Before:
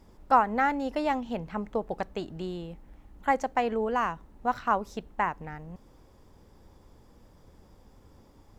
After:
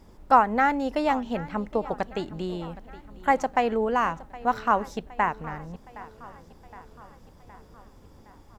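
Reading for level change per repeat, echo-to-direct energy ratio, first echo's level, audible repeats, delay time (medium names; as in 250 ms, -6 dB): -4.5 dB, -17.0 dB, -19.0 dB, 4, 766 ms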